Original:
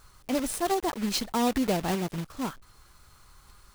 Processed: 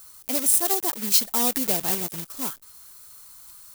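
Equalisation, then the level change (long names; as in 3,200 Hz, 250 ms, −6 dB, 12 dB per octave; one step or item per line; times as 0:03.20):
RIAA equalisation recording
low-shelf EQ 470 Hz +8 dB
high-shelf EQ 6,300 Hz +7 dB
−3.5 dB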